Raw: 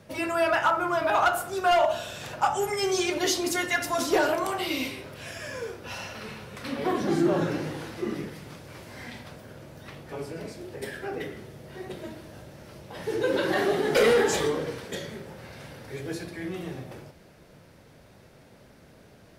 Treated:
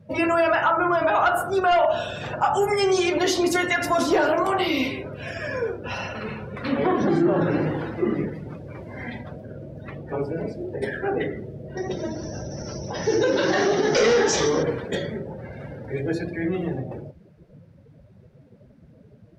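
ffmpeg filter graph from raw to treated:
ffmpeg -i in.wav -filter_complex "[0:a]asettb=1/sr,asplit=3[link_01][link_02][link_03];[link_01]atrim=end=11.774[link_04];[link_02]atrim=start=11.77:end=14.63,asetpts=PTS-STARTPTS,afade=type=in:duration=0.004:curve=qsin,afade=type=out:start_time=2.856:duration=0.004:curve=qsin,acompressor=mode=upward:threshold=-33dB:ratio=2.5:attack=3.2:release=140:knee=2.83:detection=peak,lowpass=frequency=5800:width_type=q:width=8.2[link_05];[link_03]atrim=start=14.626[link_06];[link_04][link_05]acrossfade=duration=0.004:curve1=hsin:curve2=qsin[link_07];[link_07][link_06]acrossfade=duration=0.004:curve1=qsin:curve2=hsin,afftdn=noise_reduction=19:noise_floor=-43,highshelf=frequency=4400:gain=-10,alimiter=limit=-21.5dB:level=0:latency=1:release=95,volume=9dB" out.wav

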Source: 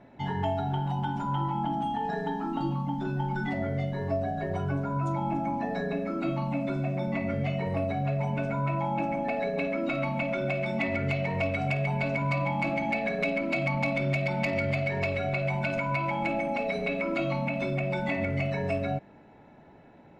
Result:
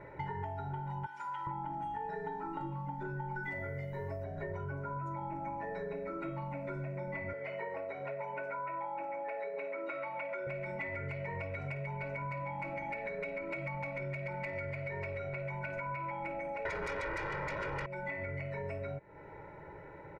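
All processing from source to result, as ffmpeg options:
ffmpeg -i in.wav -filter_complex "[0:a]asettb=1/sr,asplit=3[link_01][link_02][link_03];[link_01]atrim=end=1.064[link_04];[link_02]atrim=start=1.06:end=1.47,asetpts=PTS-STARTPTS,afade=type=in:duration=0.004:curve=qsin,afade=type=out:start_time=0.406:duration=0.004:curve=qsin,bandpass=frequency=4700:width_type=q:width=0.54,highshelf=frequency=2800:gain=9[link_05];[link_03]atrim=start=1.466[link_06];[link_04][link_05]acrossfade=duration=0.004:curve1=hsin:curve2=qsin[link_07];[link_07][link_06]acrossfade=duration=0.004:curve1=qsin:curve2=hsin,asettb=1/sr,asplit=3[link_08][link_09][link_10];[link_08]atrim=end=3.434[link_11];[link_09]atrim=start=3.43:end=4.24,asetpts=PTS-STARTPTS,afade=type=in:duration=0.004:curve=qsin,afade=type=out:start_time=0.806:duration=0.004:curve=qsin,aemphasis=mode=production:type=50fm,bandreject=frequency=4200:width=22[link_12];[link_10]atrim=start=4.236[link_13];[link_11][link_12]acrossfade=duration=0.004:curve1=hsin:curve2=qsin[link_14];[link_14][link_13]acrossfade=duration=0.004:curve1=qsin:curve2=hsin,asettb=1/sr,asplit=3[link_15][link_16][link_17];[link_15]atrim=end=7.334[link_18];[link_16]atrim=start=7.33:end=10.47,asetpts=PTS-STARTPTS,afade=type=in:duration=0.004:curve=qsin,afade=type=out:start_time=3.136:duration=0.004:curve=qsin,highpass=410,highshelf=frequency=5300:gain=-8[link_19];[link_17]atrim=start=10.466[link_20];[link_18][link_19]acrossfade=duration=0.004:curve1=hsin:curve2=qsin[link_21];[link_21][link_20]acrossfade=duration=0.004:curve1=qsin:curve2=hsin,asettb=1/sr,asplit=3[link_22][link_23][link_24];[link_22]atrim=end=16.654[link_25];[link_23]atrim=start=16.65:end=17.86,asetpts=PTS-STARTPTS,afade=type=in:duration=0.004:curve=qsin,afade=type=out:start_time=1.206:duration=0.004:curve=qsin,acrossover=split=3100[link_26][link_27];[link_27]acompressor=threshold=-58dB:ratio=4:attack=1:release=60[link_28];[link_26][link_28]amix=inputs=2:normalize=0,aeval=exprs='0.119*sin(PI/2*3.98*val(0)/0.119)':channel_layout=same[link_29];[link_24]atrim=start=17.856[link_30];[link_25][link_29]acrossfade=duration=0.004:curve1=hsin:curve2=qsin[link_31];[link_31][link_30]acrossfade=duration=0.004:curve1=qsin:curve2=hsin,highshelf=frequency=2600:width_type=q:width=3:gain=-6.5,aecho=1:1:2.1:0.93,acompressor=threshold=-40dB:ratio=6,volume=2dB" out.wav

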